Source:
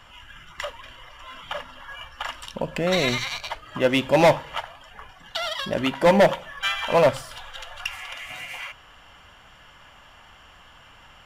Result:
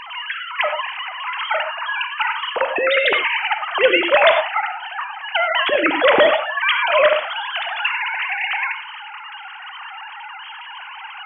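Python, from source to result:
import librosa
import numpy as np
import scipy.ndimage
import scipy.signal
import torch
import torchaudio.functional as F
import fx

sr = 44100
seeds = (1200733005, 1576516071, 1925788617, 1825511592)

y = fx.sine_speech(x, sr)
y = fx.rev_gated(y, sr, seeds[0], gate_ms=130, shape='flat', drr_db=9.0)
y = fx.spectral_comp(y, sr, ratio=2.0)
y = y * librosa.db_to_amplitude(2.5)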